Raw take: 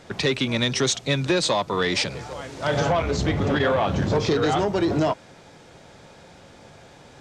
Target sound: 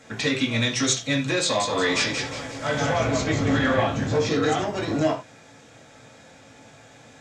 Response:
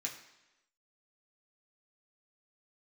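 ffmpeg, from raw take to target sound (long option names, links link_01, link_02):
-filter_complex "[0:a]asettb=1/sr,asplit=3[link_01][link_02][link_03];[link_01]atrim=end=1.424[link_04];[link_02]atrim=start=1.42:end=3.83,asetpts=PTS-STARTPTS,afade=type=in:duration=0.004:curve=qsin,afade=type=out:start_time=2.406:duration=0.004:curve=qsin,asplit=6[link_05][link_06][link_07][link_08][link_09][link_10];[link_06]adelay=178,afreqshift=-36,volume=-5.5dB[link_11];[link_07]adelay=356,afreqshift=-72,volume=-13dB[link_12];[link_08]adelay=534,afreqshift=-108,volume=-20.6dB[link_13];[link_09]adelay=712,afreqshift=-144,volume=-28.1dB[link_14];[link_10]adelay=890,afreqshift=-180,volume=-35.6dB[link_15];[link_05][link_11][link_12][link_13][link_14][link_15]amix=inputs=6:normalize=0,atrim=end_sample=106281[link_16];[link_03]atrim=start=3.826[link_17];[link_04][link_16]acrossfade=duration=0.004:curve1=hsin:curve2=qsin[link_18];[link_18][link_17]acrossfade=duration=0.004:curve1=qsin:curve2=hsin[link_19];[1:a]atrim=start_sample=2205,atrim=end_sample=4410,asetrate=42777,aresample=44100[link_20];[link_19][link_20]afir=irnorm=-1:irlink=0"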